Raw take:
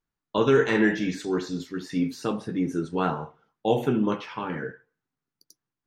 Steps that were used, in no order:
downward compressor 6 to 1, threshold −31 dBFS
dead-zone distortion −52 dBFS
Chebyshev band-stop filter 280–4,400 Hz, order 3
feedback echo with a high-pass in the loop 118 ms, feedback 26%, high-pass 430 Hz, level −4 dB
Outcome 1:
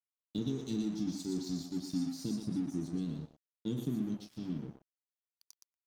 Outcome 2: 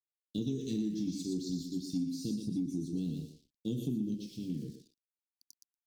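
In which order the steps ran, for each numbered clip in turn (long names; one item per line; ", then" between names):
Chebyshev band-stop filter, then downward compressor, then feedback echo with a high-pass in the loop, then dead-zone distortion
feedback echo with a high-pass in the loop, then dead-zone distortion, then Chebyshev band-stop filter, then downward compressor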